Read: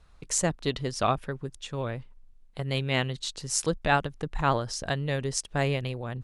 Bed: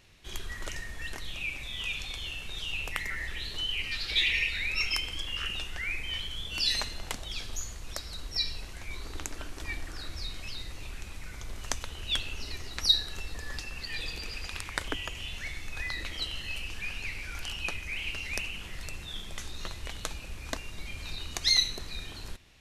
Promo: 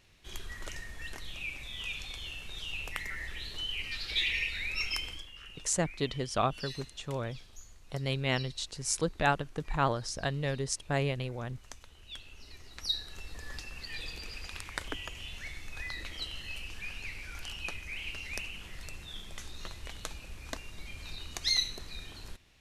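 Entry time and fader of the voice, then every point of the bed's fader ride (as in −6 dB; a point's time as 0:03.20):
5.35 s, −3.5 dB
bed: 0:05.10 −4 dB
0:05.32 −15.5 dB
0:12.14 −15.5 dB
0:13.45 −4.5 dB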